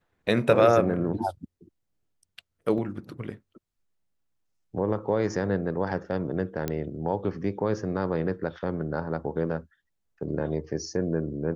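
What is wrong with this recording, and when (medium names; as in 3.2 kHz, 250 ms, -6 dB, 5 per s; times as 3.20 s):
2.78 s: dropout 3.3 ms
6.68 s: pop -14 dBFS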